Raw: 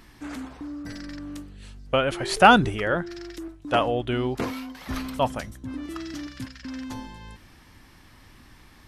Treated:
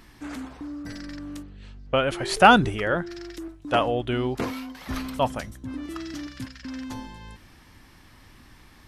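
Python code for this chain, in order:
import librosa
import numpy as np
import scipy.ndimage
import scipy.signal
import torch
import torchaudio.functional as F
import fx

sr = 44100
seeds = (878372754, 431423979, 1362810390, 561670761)

y = fx.air_absorb(x, sr, metres=130.0, at=(1.42, 1.95), fade=0.02)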